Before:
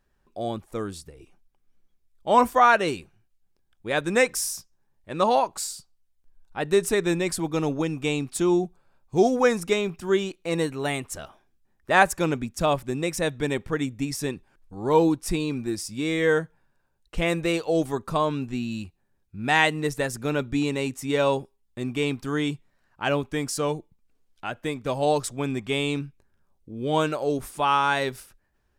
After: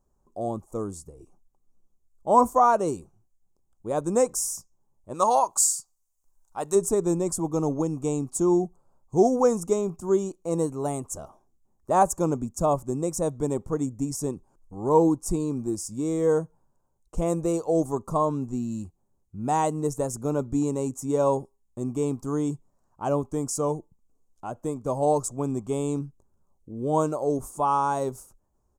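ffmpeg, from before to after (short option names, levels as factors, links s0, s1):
-filter_complex "[0:a]asplit=3[s0][s1][s2];[s0]afade=t=out:st=5.13:d=0.02[s3];[s1]tiltshelf=f=730:g=-9.5,afade=t=in:st=5.13:d=0.02,afade=t=out:st=6.74:d=0.02[s4];[s2]afade=t=in:st=6.74:d=0.02[s5];[s3][s4][s5]amix=inputs=3:normalize=0,firequalizer=gain_entry='entry(1100,0);entry(1700,-23);entry(3700,-20);entry(6700,4);entry(11000,-3)':delay=0.05:min_phase=1"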